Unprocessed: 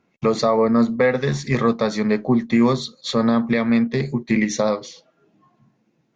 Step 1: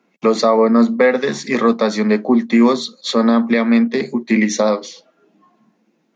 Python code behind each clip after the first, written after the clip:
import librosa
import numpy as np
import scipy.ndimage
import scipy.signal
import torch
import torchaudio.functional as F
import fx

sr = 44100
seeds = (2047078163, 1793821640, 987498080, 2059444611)

y = scipy.signal.sosfilt(scipy.signal.butter(8, 180.0, 'highpass', fs=sr, output='sos'), x)
y = y * librosa.db_to_amplitude(4.5)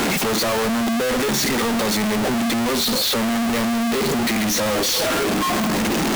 y = np.sign(x) * np.sqrt(np.mean(np.square(x)))
y = y * librosa.db_to_amplitude(-4.0)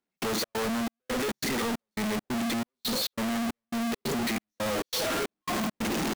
y = fx.step_gate(x, sr, bpm=137, pattern='..xx.xxx', floor_db=-60.0, edge_ms=4.5)
y = y * librosa.db_to_amplitude(-8.5)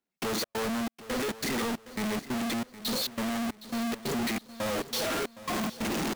y = fx.echo_feedback(x, sr, ms=765, feedback_pct=37, wet_db=-16.0)
y = y * librosa.db_to_amplitude(-1.5)